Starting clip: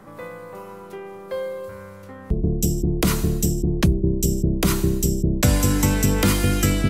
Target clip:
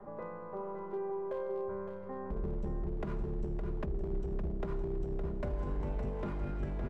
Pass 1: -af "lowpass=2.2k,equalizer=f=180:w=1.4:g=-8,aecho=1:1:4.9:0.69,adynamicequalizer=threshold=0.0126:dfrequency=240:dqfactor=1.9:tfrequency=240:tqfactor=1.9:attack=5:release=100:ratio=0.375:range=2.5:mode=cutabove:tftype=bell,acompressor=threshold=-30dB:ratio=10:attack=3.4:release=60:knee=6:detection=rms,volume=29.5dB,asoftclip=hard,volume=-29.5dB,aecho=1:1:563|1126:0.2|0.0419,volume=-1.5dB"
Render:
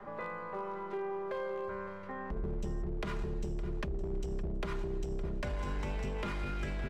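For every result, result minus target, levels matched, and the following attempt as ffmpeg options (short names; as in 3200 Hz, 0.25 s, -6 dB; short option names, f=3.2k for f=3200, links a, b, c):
2000 Hz band +10.0 dB; echo-to-direct -7 dB
-af "lowpass=790,equalizer=f=180:w=1.4:g=-8,aecho=1:1:4.9:0.69,adynamicequalizer=threshold=0.0126:dfrequency=240:dqfactor=1.9:tfrequency=240:tqfactor=1.9:attack=5:release=100:ratio=0.375:range=2.5:mode=cutabove:tftype=bell,acompressor=threshold=-30dB:ratio=10:attack=3.4:release=60:knee=6:detection=rms,volume=29.5dB,asoftclip=hard,volume=-29.5dB,aecho=1:1:563|1126:0.2|0.0419,volume=-1.5dB"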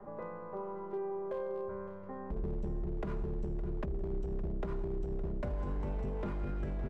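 echo-to-direct -7 dB
-af "lowpass=790,equalizer=f=180:w=1.4:g=-8,aecho=1:1:4.9:0.69,adynamicequalizer=threshold=0.0126:dfrequency=240:dqfactor=1.9:tfrequency=240:tqfactor=1.9:attack=5:release=100:ratio=0.375:range=2.5:mode=cutabove:tftype=bell,acompressor=threshold=-30dB:ratio=10:attack=3.4:release=60:knee=6:detection=rms,volume=29.5dB,asoftclip=hard,volume=-29.5dB,aecho=1:1:563|1126|1689:0.447|0.0938|0.0197,volume=-1.5dB"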